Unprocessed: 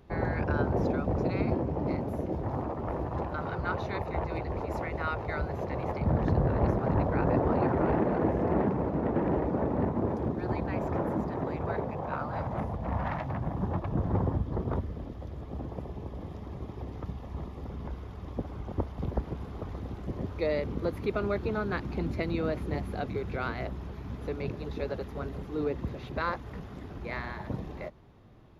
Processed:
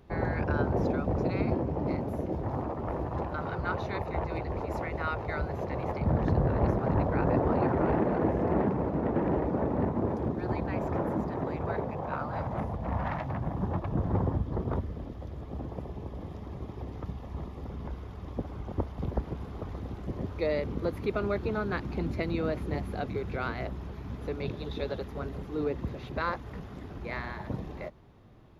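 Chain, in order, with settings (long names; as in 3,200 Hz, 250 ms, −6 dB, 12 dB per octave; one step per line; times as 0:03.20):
0:24.42–0:25.01: parametric band 3,600 Hz +10.5 dB 0.3 octaves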